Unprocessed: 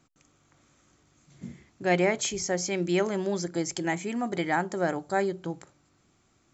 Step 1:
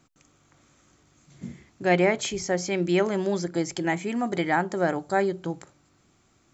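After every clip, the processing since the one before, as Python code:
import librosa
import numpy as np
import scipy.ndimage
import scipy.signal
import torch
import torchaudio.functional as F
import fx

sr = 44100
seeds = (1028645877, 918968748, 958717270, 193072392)

y = fx.dynamic_eq(x, sr, hz=6700.0, q=1.2, threshold_db=-48.0, ratio=4.0, max_db=-6)
y = y * 10.0 ** (3.0 / 20.0)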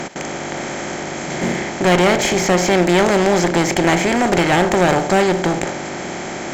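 y = fx.bin_compress(x, sr, power=0.4)
y = fx.clip_asym(y, sr, top_db=-23.5, bottom_db=-11.0)
y = y * 10.0 ** (7.5 / 20.0)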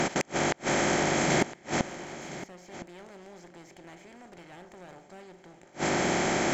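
y = fx.gate_flip(x, sr, shuts_db=-13.0, range_db=-34)
y = y + 10.0 ** (-15.5 / 20.0) * np.pad(y, (int(1012 * sr / 1000.0), 0))[:len(y)]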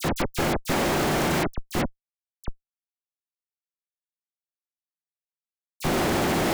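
y = fx.schmitt(x, sr, flips_db=-27.5)
y = fx.dispersion(y, sr, late='lows', ms=45.0, hz=2600.0)
y = y * 10.0 ** (8.0 / 20.0)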